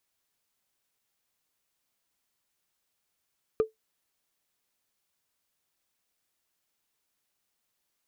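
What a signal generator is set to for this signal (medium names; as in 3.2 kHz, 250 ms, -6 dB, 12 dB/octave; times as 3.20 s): wood hit, lowest mode 439 Hz, decay 0.14 s, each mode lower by 12 dB, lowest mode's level -16 dB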